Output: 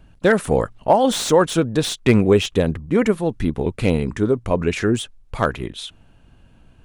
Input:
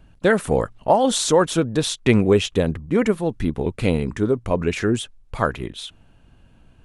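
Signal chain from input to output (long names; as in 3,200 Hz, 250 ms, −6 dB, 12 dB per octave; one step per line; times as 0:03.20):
slew-rate limiting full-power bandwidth 360 Hz
level +1.5 dB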